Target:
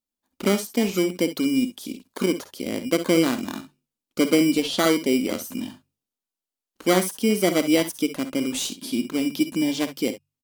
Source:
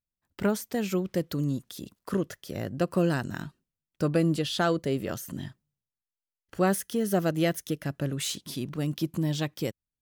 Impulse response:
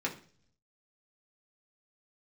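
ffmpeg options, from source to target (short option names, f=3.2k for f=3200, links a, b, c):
-filter_complex "[0:a]lowshelf=f=190:t=q:w=3:g=-9.5,bandreject=f=50:t=h:w=6,bandreject=f=100:t=h:w=6,bandreject=f=150:t=h:w=6,acrossover=split=2100[a][b];[a]acrusher=samples=16:mix=1:aa=0.000001[c];[c][b]amix=inputs=2:normalize=0,aecho=1:1:53|64:0.224|0.188,asetrate=42336,aresample=44100,volume=4dB"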